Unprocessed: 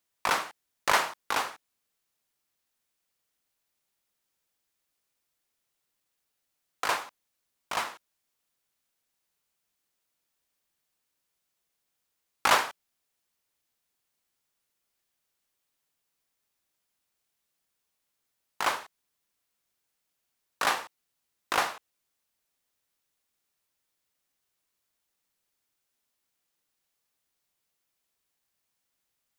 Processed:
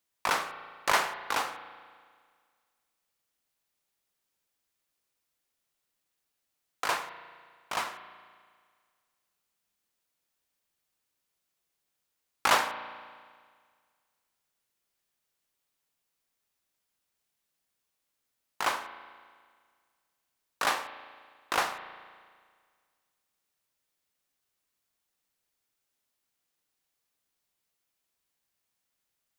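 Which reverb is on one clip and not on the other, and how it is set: spring tank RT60 1.8 s, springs 35 ms, chirp 35 ms, DRR 10.5 dB; gain -1.5 dB

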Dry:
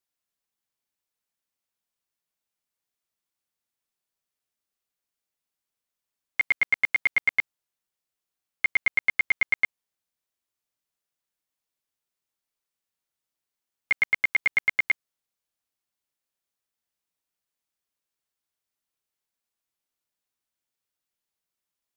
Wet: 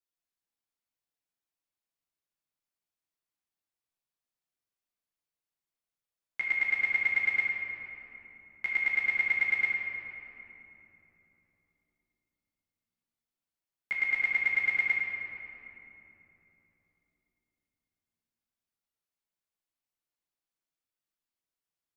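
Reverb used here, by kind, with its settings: shoebox room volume 190 m³, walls hard, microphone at 0.71 m; gain -10.5 dB

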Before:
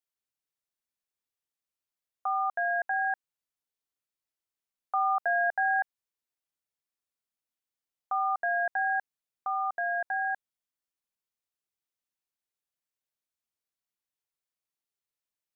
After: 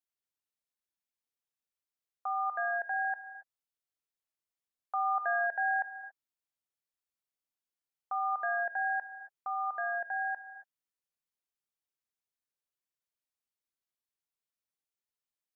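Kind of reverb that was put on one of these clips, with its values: non-linear reverb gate 0.3 s flat, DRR 9 dB; gain -5 dB

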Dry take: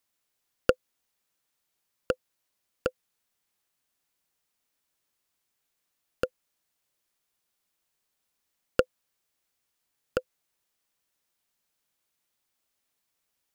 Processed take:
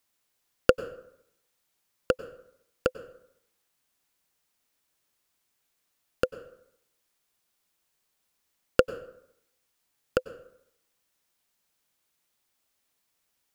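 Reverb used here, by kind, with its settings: plate-style reverb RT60 0.73 s, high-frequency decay 0.6×, pre-delay 85 ms, DRR 15 dB; gain +3 dB

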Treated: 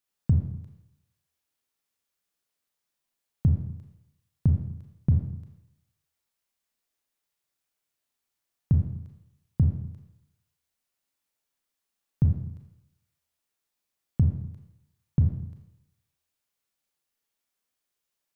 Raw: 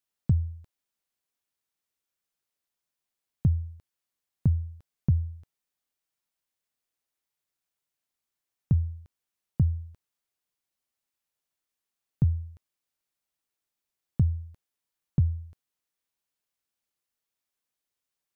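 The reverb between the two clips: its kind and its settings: Schroeder reverb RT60 0.81 s, combs from 27 ms, DRR 2 dB; gain +1 dB

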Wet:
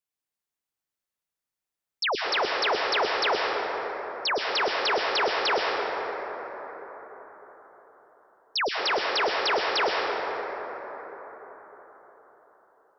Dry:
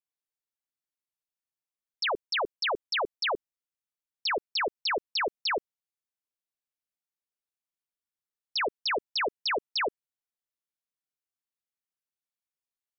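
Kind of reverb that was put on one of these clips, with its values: plate-style reverb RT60 5 s, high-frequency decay 0.3×, pre-delay 95 ms, DRR -1.5 dB; gain +2 dB

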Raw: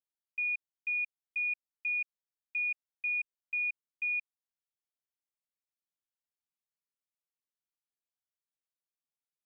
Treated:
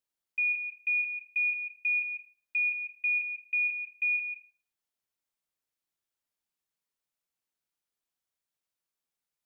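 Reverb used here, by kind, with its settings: plate-style reverb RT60 0.62 s, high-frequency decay 0.45×, pre-delay 0.12 s, DRR 7.5 dB; gain +4.5 dB

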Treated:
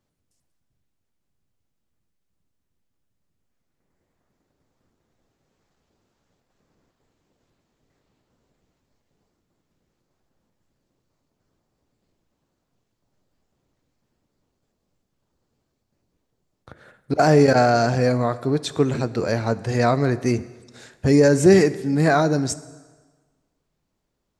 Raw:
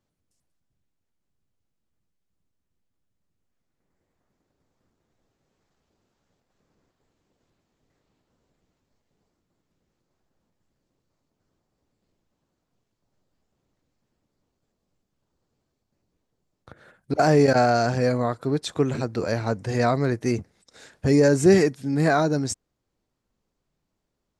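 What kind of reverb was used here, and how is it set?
plate-style reverb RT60 1.4 s, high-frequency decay 0.85×, DRR 14.5 dB; gain +2.5 dB

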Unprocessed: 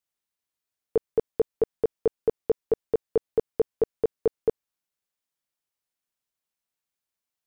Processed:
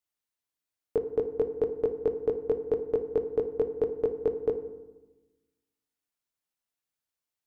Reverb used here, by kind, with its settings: FDN reverb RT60 1.1 s, low-frequency decay 1.35×, high-frequency decay 0.45×, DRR 7.5 dB; gain -3 dB

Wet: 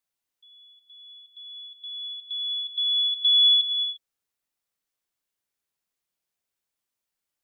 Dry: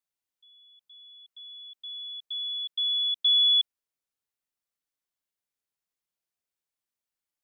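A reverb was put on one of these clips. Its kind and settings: non-linear reverb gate 0.37 s flat, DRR 9 dB; gain +4 dB

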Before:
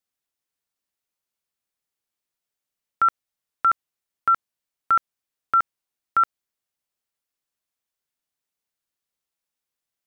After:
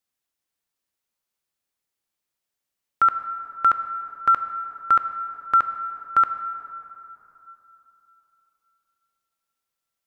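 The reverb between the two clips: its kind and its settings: plate-style reverb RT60 3.3 s, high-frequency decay 0.5×, DRR 8.5 dB; gain +1.5 dB

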